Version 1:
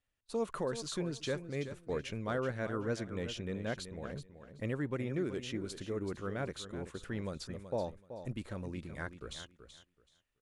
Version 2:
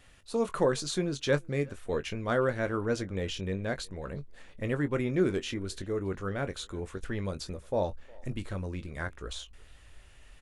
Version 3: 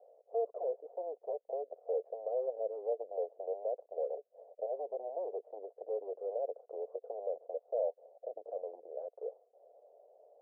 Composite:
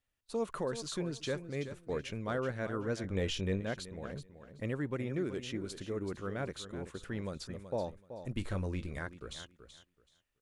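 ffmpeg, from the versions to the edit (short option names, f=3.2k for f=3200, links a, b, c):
-filter_complex "[1:a]asplit=2[a][b];[0:a]asplit=3[c][d][e];[c]atrim=end=3.042[f];[a]atrim=start=3.038:end=3.602[g];[d]atrim=start=3.598:end=8.362[h];[b]atrim=start=8.358:end=8.992[i];[e]atrim=start=8.988[j];[f][g]acrossfade=d=0.004:c1=hsin:c2=hsin[k];[k][h]acrossfade=d=0.004:c1=hsin:c2=hsin[l];[l][i]acrossfade=d=0.004:c1=hsin:c2=hsin[m];[m][j]acrossfade=d=0.004:c1=hsin:c2=hsin"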